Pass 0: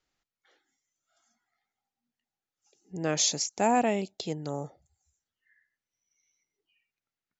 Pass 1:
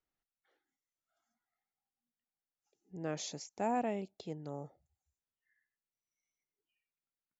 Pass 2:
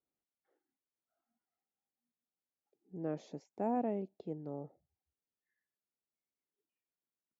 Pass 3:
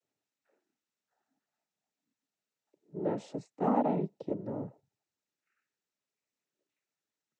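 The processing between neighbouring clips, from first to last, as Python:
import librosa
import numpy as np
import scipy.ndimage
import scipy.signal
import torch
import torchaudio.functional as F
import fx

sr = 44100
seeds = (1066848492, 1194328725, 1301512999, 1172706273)

y1 = fx.high_shelf(x, sr, hz=2800.0, db=-11.5)
y1 = F.gain(torch.from_numpy(y1), -8.5).numpy()
y2 = fx.bandpass_q(y1, sr, hz=310.0, q=0.76)
y2 = F.gain(torch.from_numpy(y2), 2.5).numpy()
y3 = fx.noise_vocoder(y2, sr, seeds[0], bands=12)
y3 = F.gain(torch.from_numpy(y3), 6.5).numpy()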